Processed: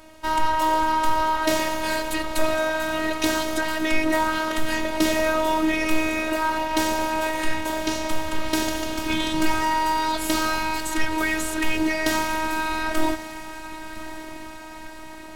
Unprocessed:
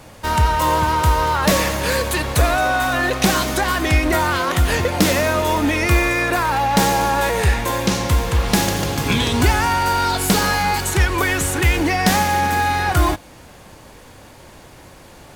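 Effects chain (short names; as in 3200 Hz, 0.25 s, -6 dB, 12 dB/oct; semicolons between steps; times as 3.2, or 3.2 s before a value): high shelf 5900 Hz -5.5 dB; diffused feedback echo 1.089 s, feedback 62%, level -14 dB; robotiser 315 Hz; gain -2.5 dB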